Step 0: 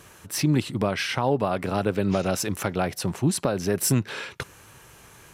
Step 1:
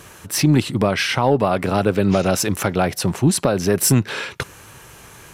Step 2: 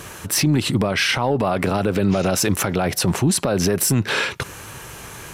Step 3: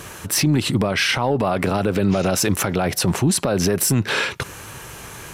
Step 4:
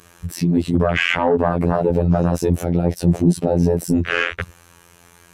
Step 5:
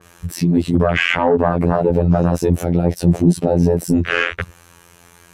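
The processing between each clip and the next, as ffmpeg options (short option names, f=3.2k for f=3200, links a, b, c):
-af "acontrast=87"
-af "alimiter=limit=-16dB:level=0:latency=1:release=66,volume=6dB"
-af anull
-af "afftfilt=real='hypot(re,im)*cos(PI*b)':imag='0':win_size=2048:overlap=0.75,afwtdn=0.0501,acontrast=82"
-af "adynamicequalizer=threshold=0.0224:dfrequency=3100:dqfactor=0.7:tfrequency=3100:tqfactor=0.7:attack=5:release=100:ratio=0.375:range=2:mode=cutabove:tftype=highshelf,volume=2dB"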